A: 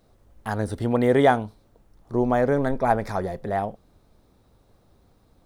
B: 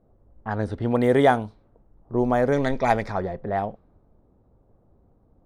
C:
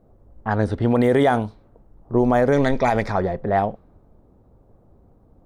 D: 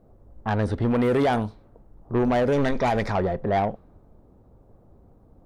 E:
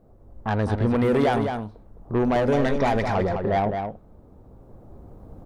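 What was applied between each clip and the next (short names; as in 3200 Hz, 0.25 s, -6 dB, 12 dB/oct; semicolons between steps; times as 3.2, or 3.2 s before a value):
low-pass opened by the level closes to 780 Hz, open at -17 dBFS; spectral gain 2.53–3.02, 1800–7500 Hz +10 dB
limiter -14.5 dBFS, peak gain reduction 9.5 dB; gain +6 dB
soft clip -16.5 dBFS, distortion -12 dB
recorder AGC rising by 6 dB/s; outdoor echo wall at 36 m, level -6 dB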